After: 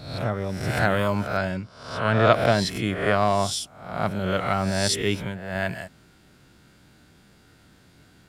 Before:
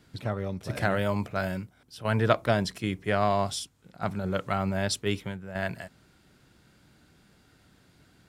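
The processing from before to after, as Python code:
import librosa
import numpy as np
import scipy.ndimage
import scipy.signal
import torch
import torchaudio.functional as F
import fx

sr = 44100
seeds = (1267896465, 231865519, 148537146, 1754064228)

y = fx.spec_swells(x, sr, rise_s=0.69)
y = fx.lowpass(y, sr, hz=6500.0, slope=12, at=(1.37, 2.33))
y = y * 10.0 ** (3.0 / 20.0)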